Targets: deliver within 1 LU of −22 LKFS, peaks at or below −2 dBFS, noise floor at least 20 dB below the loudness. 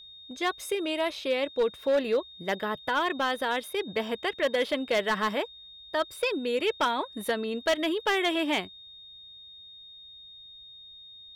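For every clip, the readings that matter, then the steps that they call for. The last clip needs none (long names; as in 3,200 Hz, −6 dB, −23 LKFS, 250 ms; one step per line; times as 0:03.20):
share of clipped samples 1.0%; peaks flattened at −19.5 dBFS; interfering tone 3,700 Hz; level of the tone −46 dBFS; integrated loudness −28.5 LKFS; sample peak −19.5 dBFS; target loudness −22.0 LKFS
→ clipped peaks rebuilt −19.5 dBFS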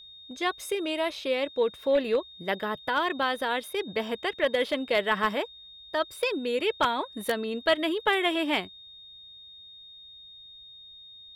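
share of clipped samples 0.0%; interfering tone 3,700 Hz; level of the tone −46 dBFS
→ notch filter 3,700 Hz, Q 30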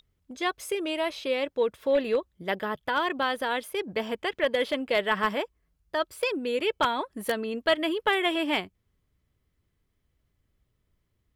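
interfering tone none found; integrated loudness −28.0 LKFS; sample peak −10.5 dBFS; target loudness −22.0 LKFS
→ level +6 dB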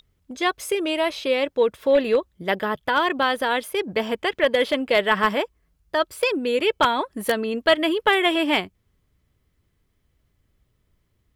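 integrated loudness −22.0 LKFS; sample peak −4.5 dBFS; background noise floor −70 dBFS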